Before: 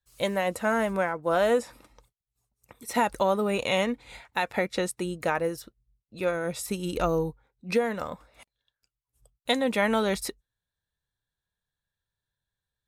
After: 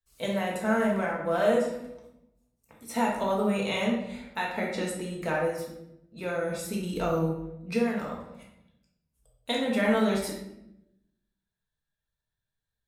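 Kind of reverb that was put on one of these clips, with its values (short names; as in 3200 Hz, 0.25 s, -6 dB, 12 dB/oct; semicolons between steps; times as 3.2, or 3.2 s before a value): shoebox room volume 260 m³, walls mixed, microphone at 1.6 m; gain -7 dB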